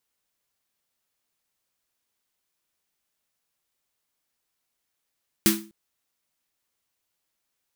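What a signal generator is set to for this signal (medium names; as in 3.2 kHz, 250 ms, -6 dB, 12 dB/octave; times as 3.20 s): snare drum length 0.25 s, tones 210 Hz, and 330 Hz, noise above 980 Hz, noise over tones 0.5 dB, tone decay 0.39 s, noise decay 0.29 s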